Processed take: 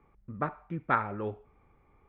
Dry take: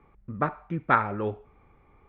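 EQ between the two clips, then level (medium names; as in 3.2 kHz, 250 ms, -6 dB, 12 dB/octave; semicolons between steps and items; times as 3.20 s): distance through air 71 m; -5.0 dB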